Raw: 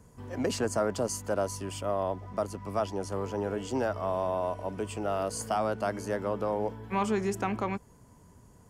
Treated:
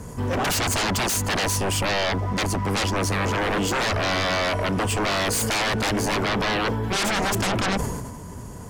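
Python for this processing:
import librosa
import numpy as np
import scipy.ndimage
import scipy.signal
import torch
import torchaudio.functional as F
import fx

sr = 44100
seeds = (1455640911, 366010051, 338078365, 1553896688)

y = fx.fold_sine(x, sr, drive_db=16, ceiling_db=-18.5)
y = fx.sustainer(y, sr, db_per_s=37.0)
y = F.gain(torch.from_numpy(y), -1.5).numpy()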